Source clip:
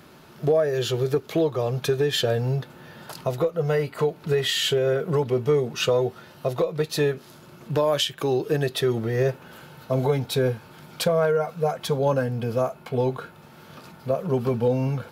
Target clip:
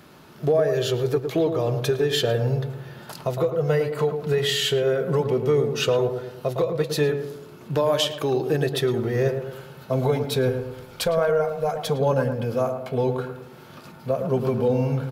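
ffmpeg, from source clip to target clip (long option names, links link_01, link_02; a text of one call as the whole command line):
ffmpeg -i in.wav -filter_complex "[0:a]asplit=3[link_01][link_02][link_03];[link_01]afade=type=out:start_time=10.48:duration=0.02[link_04];[link_02]asubboost=boost=9:cutoff=51,afade=type=in:start_time=10.48:duration=0.02,afade=type=out:start_time=11.67:duration=0.02[link_05];[link_03]afade=type=in:start_time=11.67:duration=0.02[link_06];[link_04][link_05][link_06]amix=inputs=3:normalize=0,asplit=2[link_07][link_08];[link_08]adelay=109,lowpass=frequency=1100:poles=1,volume=-6dB,asplit=2[link_09][link_10];[link_10]adelay=109,lowpass=frequency=1100:poles=1,volume=0.5,asplit=2[link_11][link_12];[link_12]adelay=109,lowpass=frequency=1100:poles=1,volume=0.5,asplit=2[link_13][link_14];[link_14]adelay=109,lowpass=frequency=1100:poles=1,volume=0.5,asplit=2[link_15][link_16];[link_16]adelay=109,lowpass=frequency=1100:poles=1,volume=0.5,asplit=2[link_17][link_18];[link_18]adelay=109,lowpass=frequency=1100:poles=1,volume=0.5[link_19];[link_07][link_09][link_11][link_13][link_15][link_17][link_19]amix=inputs=7:normalize=0" out.wav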